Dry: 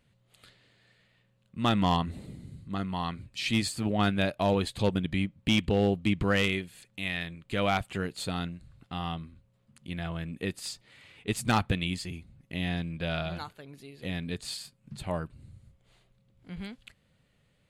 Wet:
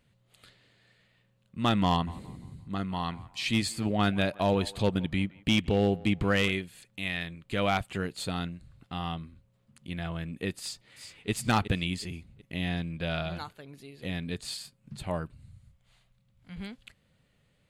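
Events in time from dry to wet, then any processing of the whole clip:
0:01.90–0:06.52: feedback echo with a band-pass in the loop 172 ms, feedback 40%, level −18.5 dB
0:10.59–0:11.30: delay throw 370 ms, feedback 40%, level −9.5 dB
0:15.35–0:16.56: parametric band 370 Hz −13.5 dB 1.1 octaves

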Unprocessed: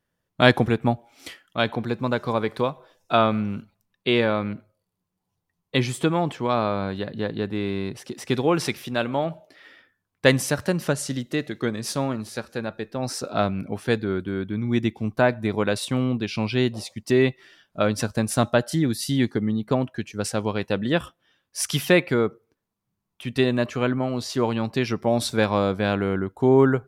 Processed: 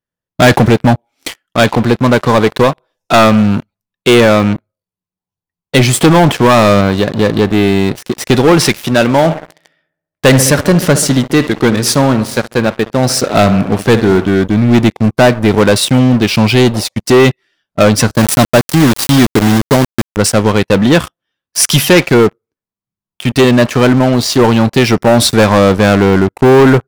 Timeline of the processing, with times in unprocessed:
0:05.93–0:06.81: leveller curve on the samples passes 1
0:09.15–0:14.27: feedback echo with a low-pass in the loop 68 ms, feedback 69%, low-pass 2,200 Hz, level −16 dB
0:18.17–0:20.17: centre clipping without the shift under −25.5 dBFS
whole clip: leveller curve on the samples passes 5

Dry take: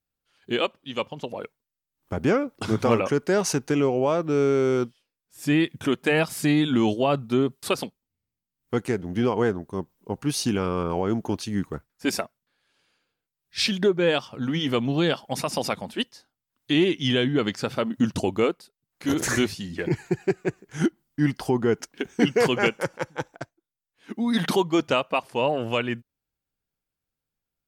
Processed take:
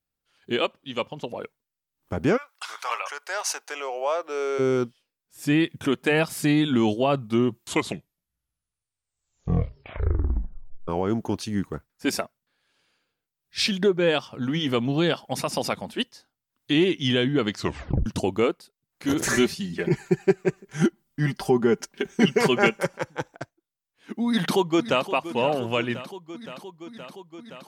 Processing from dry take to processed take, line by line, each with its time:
0:02.36–0:04.58: high-pass filter 1,100 Hz → 450 Hz 24 dB per octave
0:07.10: tape stop 3.78 s
0:17.54: tape stop 0.52 s
0:19.26–0:23.01: comb filter 5.1 ms
0:24.26–0:25.08: delay throw 520 ms, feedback 80%, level −13.5 dB

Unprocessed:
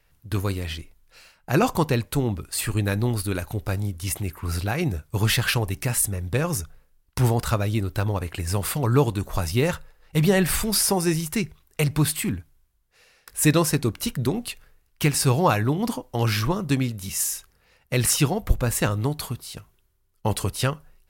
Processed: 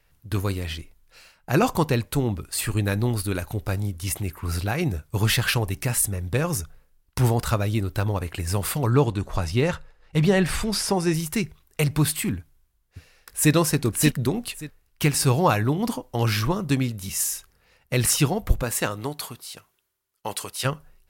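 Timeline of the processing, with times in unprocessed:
0:08.90–0:11.14: high-frequency loss of the air 53 metres
0:12.38–0:13.53: delay throw 580 ms, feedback 15%, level −1.5 dB
0:18.62–0:20.64: high-pass filter 280 Hz → 1,100 Hz 6 dB per octave

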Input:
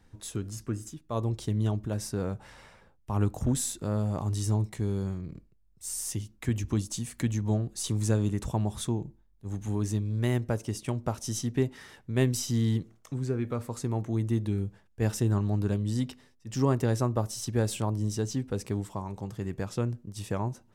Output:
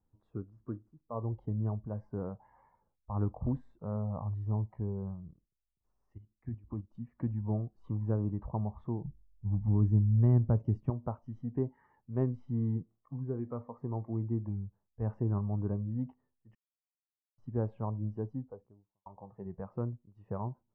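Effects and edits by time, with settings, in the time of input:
0:05.34–0:06.95: output level in coarse steps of 10 dB
0:09.04–0:10.90: bass and treble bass +10 dB, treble +13 dB
0:14.48–0:15.07: dynamic equaliser 340 Hz, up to −4 dB, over −43 dBFS, Q 0.86
0:16.55–0:17.38: silence
0:18.10–0:19.06: fade out and dull
whole clip: noise reduction from a noise print of the clip's start 13 dB; Chebyshev low-pass filter 1,100 Hz, order 3; level −5 dB

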